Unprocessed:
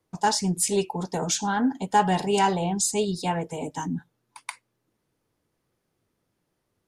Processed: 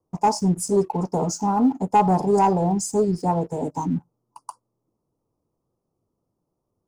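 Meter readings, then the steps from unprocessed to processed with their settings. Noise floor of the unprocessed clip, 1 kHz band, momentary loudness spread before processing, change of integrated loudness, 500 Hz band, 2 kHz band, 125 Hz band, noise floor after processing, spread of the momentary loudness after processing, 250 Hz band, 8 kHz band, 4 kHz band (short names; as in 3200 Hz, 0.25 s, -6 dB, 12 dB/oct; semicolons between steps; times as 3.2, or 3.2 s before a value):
-77 dBFS, +3.5 dB, 12 LU, +3.5 dB, +5.0 dB, -9.0 dB, +5.5 dB, -79 dBFS, 8 LU, +5.0 dB, -4.5 dB, -8.5 dB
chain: inverse Chebyshev band-stop 1700–3600 Hz, stop band 40 dB; high shelf 2800 Hz -11.5 dB; sample leveller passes 1; gain +2 dB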